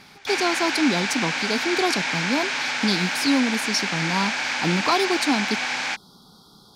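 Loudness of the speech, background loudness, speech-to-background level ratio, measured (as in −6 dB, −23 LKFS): −25.0 LKFS, −24.5 LKFS, −0.5 dB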